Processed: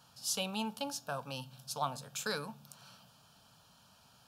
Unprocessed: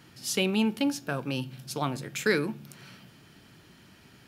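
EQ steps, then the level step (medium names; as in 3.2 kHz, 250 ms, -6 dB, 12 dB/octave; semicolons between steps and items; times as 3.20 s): bass shelf 340 Hz -11 dB; treble shelf 8.4 kHz -4 dB; static phaser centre 840 Hz, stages 4; 0.0 dB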